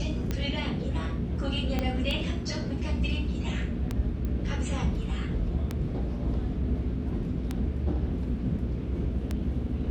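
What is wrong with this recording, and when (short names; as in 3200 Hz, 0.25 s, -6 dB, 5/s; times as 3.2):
hum 60 Hz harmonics 7 -34 dBFS
tick 33 1/3 rpm -16 dBFS
1.79 pop -15 dBFS
4.25 pop -22 dBFS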